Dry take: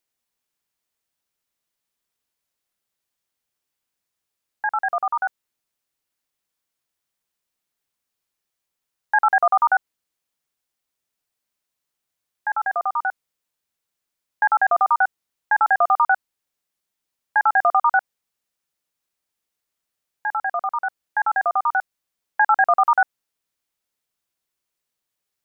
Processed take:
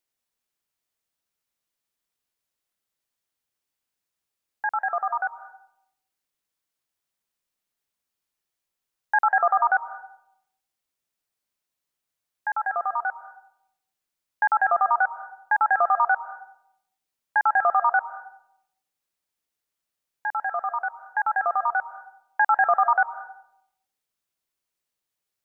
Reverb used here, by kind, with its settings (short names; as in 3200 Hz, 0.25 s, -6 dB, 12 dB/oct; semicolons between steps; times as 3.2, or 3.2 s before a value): digital reverb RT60 0.76 s, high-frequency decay 0.4×, pre-delay 0.12 s, DRR 12.5 dB; gain -3 dB